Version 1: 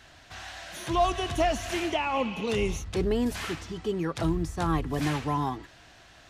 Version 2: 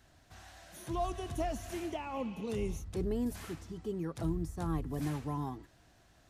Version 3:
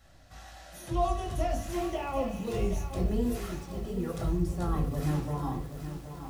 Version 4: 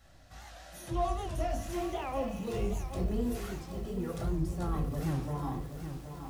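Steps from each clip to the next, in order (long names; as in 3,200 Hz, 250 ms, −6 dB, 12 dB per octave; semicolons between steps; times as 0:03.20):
drawn EQ curve 220 Hz 0 dB, 2,900 Hz −11 dB, 6,500 Hz −5 dB, 12,000 Hz +2 dB; level −6 dB
convolution reverb RT60 0.45 s, pre-delay 4 ms, DRR 0 dB; feedback echo at a low word length 774 ms, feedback 55%, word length 8 bits, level −9.5 dB
in parallel at −6 dB: soft clipping −34.5 dBFS, distortion −6 dB; on the sum: wow of a warped record 78 rpm, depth 160 cents; level −4.5 dB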